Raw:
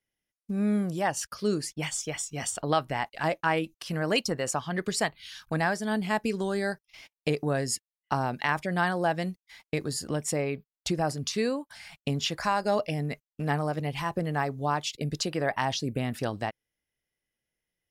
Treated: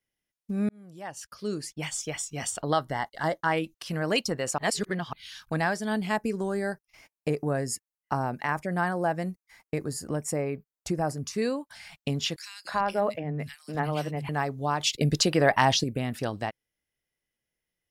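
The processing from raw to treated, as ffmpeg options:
-filter_complex "[0:a]asettb=1/sr,asplit=3[s0][s1][s2];[s0]atrim=end=2.644[s3];[s1]atrim=start=2.64:end=3.52,asetpts=PTS-STARTPTS,afade=t=in:d=0.004:c=qsin,afade=t=out:st=0.876:d=0.004:c=qsin,asuperstop=centerf=2500:order=4:qfactor=3[s4];[s2]atrim=start=3.516[s5];[s3][s4]acrossfade=d=0.004:c1=hsin:c2=qsin[s6];[s6][s5]acrossfade=d=0.004:c1=qsin:c2=hsin,asettb=1/sr,asplit=3[s7][s8][s9];[s7]atrim=end=6.164[s10];[s8]atrim=start=6.16:end=11.42,asetpts=PTS-STARTPTS,afade=t=in:d=0.004:c=qsin,afade=t=out:st=5.256:d=0.004:c=qsin,equalizer=f=3500:w=1.4:g=-13[s11];[s9]atrim=start=11.416[s12];[s10][s11]acrossfade=d=0.004:c1=hsin:c2=qsin[s13];[s13][s12]acrossfade=d=0.004:c1=qsin:c2=hsin,asettb=1/sr,asplit=3[s14][s15][s16];[s14]atrim=end=12.364[s17];[s15]atrim=start=12.36:end=14.29,asetpts=PTS-STARTPTS,afade=t=in:d=0.004:c=qsin,afade=t=out:st=1.926:d=0.004:c=qsin,acrossover=split=170|2400[s18][s19][s20];[s19]adelay=290[s21];[s18]adelay=350[s22];[s22][s21][s20]amix=inputs=3:normalize=0,atrim=end_sample=85113[s23];[s16]atrim=start=14.286[s24];[s17][s23]acrossfade=d=0.004:c1=hsin:c2=qsin[s25];[s25][s24]acrossfade=d=0.004:c1=qsin:c2=hsin,asettb=1/sr,asplit=3[s26][s27][s28];[s26]atrim=end=14.804[s29];[s27]atrim=start=14.8:end=15.84,asetpts=PTS-STARTPTS,afade=t=in:d=0.004:c=qsin,afade=t=out:st=1.036:d=0.004:c=qsin,acontrast=81[s30];[s28]atrim=start=15.836[s31];[s29][s30]acrossfade=d=0.004:c1=hsin:c2=qsin[s32];[s32][s31]acrossfade=d=0.004:c1=qsin:c2=hsin,asplit=4[s33][s34][s35][s36];[s33]atrim=end=0.69,asetpts=PTS-STARTPTS,afade=t=out:st=0.686:d=0.004:c=hsin[s37];[s34]atrim=start=0.69:end=4.582,asetpts=PTS-STARTPTS,afade=t=in:d=1.38[s38];[s35]atrim=start=4.578:end=5.132,asetpts=PTS-STARTPTS,areverse[s39];[s36]atrim=start=5.128[s40];[s37][s38]concat=n=2:v=0:a=1[s41];[s41][s39]acrossfade=d=0.004:c1=hsin:c2=hsin[s42];[s42][s40]acrossfade=d=0.004:c1=hsin:c2=hsin"

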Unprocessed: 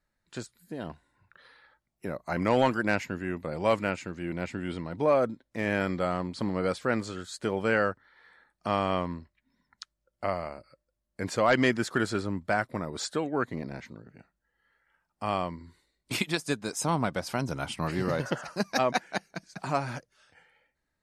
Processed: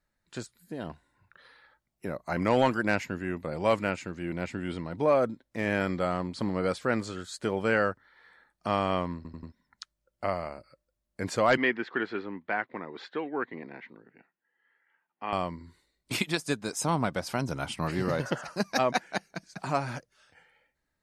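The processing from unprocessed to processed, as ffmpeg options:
-filter_complex "[0:a]asettb=1/sr,asplit=3[s0][s1][s2];[s0]atrim=end=11.574[s3];[s1]atrim=start=11.57:end=15.33,asetpts=PTS-STARTPTS,afade=t=in:d=0.004:c=qsin,afade=t=out:st=3.756:d=0.004:c=qsin,highpass=320,equalizer=f=600:t=q:w=4:g=-9,equalizer=f=1300:t=q:w=4:g=-5,equalizer=f=1900:t=q:w=4:g=3,lowpass=f=3100:w=0.5412,lowpass=f=3100:w=1.3066[s4];[s2]atrim=start=15.326[s5];[s3][s4]acrossfade=d=0.004:c1=hsin:c2=qsin[s6];[s6][s5]acrossfade=d=0.004:c1=qsin:c2=hsin,asplit=5[s7][s8][s9][s10][s11];[s7]atrim=end=9.252[s12];[s8]atrim=start=9.158:end=9.252[s13];[s9]atrim=start=9.158:end=9.252[s14];[s10]atrim=start=9.158:end=9.252[s15];[s11]atrim=start=9.518[s16];[s12][s13]acrossfade=d=0.004:c1=hsin:c2=hsin[s17];[s17][s14]acrossfade=d=0.004:c1=hsin:c2=hsin[s18];[s18][s15]acrossfade=d=0.004:c1=hsin:c2=hsin[s19];[s19][s16]acrossfade=d=0.004:c1=hsin:c2=hsin"

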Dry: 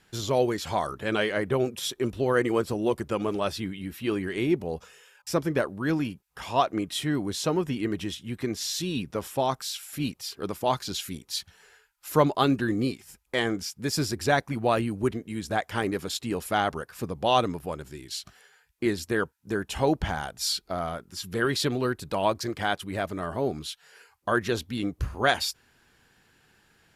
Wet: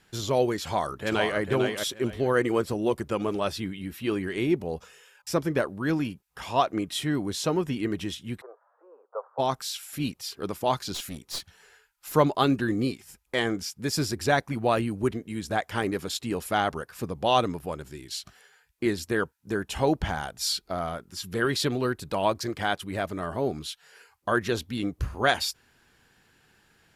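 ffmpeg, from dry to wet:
-filter_complex "[0:a]asplit=2[s0][s1];[s1]afade=t=in:st=0.61:d=0.01,afade=t=out:st=1.38:d=0.01,aecho=0:1:450|900|1350:0.562341|0.112468|0.0224937[s2];[s0][s2]amix=inputs=2:normalize=0,asplit=3[s3][s4][s5];[s3]afade=t=out:st=8.4:d=0.02[s6];[s4]asuperpass=centerf=790:order=12:qfactor=0.91,afade=t=in:st=8.4:d=0.02,afade=t=out:st=9.38:d=0.02[s7];[s5]afade=t=in:st=9.38:d=0.02[s8];[s6][s7][s8]amix=inputs=3:normalize=0,asettb=1/sr,asplit=3[s9][s10][s11];[s9]atrim=end=10.944[s12];[s10]atrim=start=10.94:end=12.14,asetpts=PTS-STARTPTS,afade=t=in:d=0.004:c=qsin,afade=t=out:st=1.196:d=0.004:c=qsin,aeval=exprs='clip(val(0),-1,0.0168)':c=same[s13];[s11]atrim=start=12.136[s14];[s12][s13]acrossfade=d=0.004:c1=hsin:c2=qsin[s15];[s15][s14]acrossfade=d=0.004:c1=qsin:c2=hsin"

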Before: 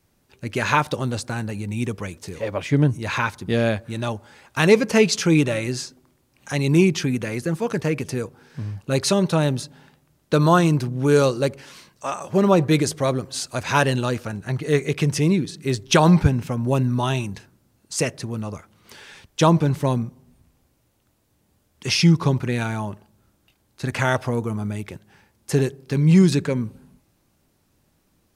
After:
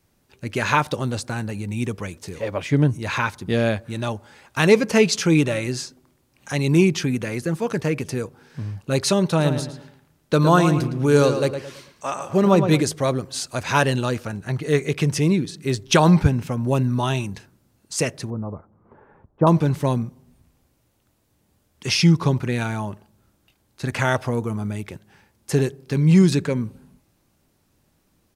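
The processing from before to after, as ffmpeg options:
-filter_complex "[0:a]asplit=3[s0][s1][s2];[s0]afade=t=out:st=9.38:d=0.02[s3];[s1]asplit=2[s4][s5];[s5]adelay=111,lowpass=f=3300:p=1,volume=0.398,asplit=2[s6][s7];[s7]adelay=111,lowpass=f=3300:p=1,volume=0.36,asplit=2[s8][s9];[s9]adelay=111,lowpass=f=3300:p=1,volume=0.36,asplit=2[s10][s11];[s11]adelay=111,lowpass=f=3300:p=1,volume=0.36[s12];[s4][s6][s8][s10][s12]amix=inputs=5:normalize=0,afade=t=in:st=9.38:d=0.02,afade=t=out:st=12.81:d=0.02[s13];[s2]afade=t=in:st=12.81:d=0.02[s14];[s3][s13][s14]amix=inputs=3:normalize=0,asettb=1/sr,asplit=3[s15][s16][s17];[s15]atrim=end=18.304[s18];[s16]atrim=start=18.3:end=19.47,asetpts=PTS-STARTPTS,afade=t=in:d=0.004:c=qsin,afade=t=out:st=1.166:d=0.004:c=qsin,lowpass=f=1100:w=0.5412,lowpass=f=1100:w=1.3066[s19];[s17]atrim=start=19.466[s20];[s18][s19]acrossfade=d=0.004:c1=hsin:c2=qsin[s21];[s21][s20]acrossfade=d=0.004:c1=qsin:c2=hsin"

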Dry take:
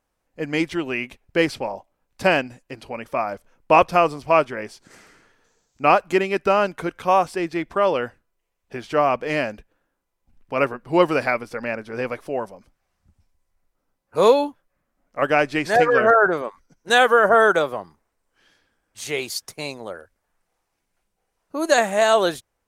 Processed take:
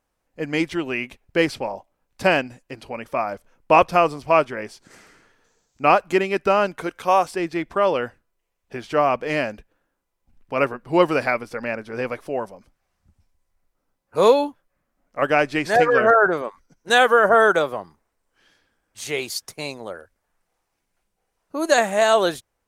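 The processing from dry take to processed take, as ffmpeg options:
-filter_complex "[0:a]asettb=1/sr,asplit=3[s0][s1][s2];[s0]atrim=end=6.814[s3];[s1]atrim=start=6.81:end=7.31,asetpts=PTS-STARTPTS,afade=t=in:d=0.004:c=qsin,afade=t=out:st=0.496:d=0.004:c=qsin,bass=f=250:g=-6,treble=f=4000:g=4[s4];[s2]atrim=start=7.306[s5];[s3][s4]acrossfade=d=0.004:c1=hsin:c2=qsin[s6];[s6][s5]acrossfade=d=0.004:c1=qsin:c2=hsin"

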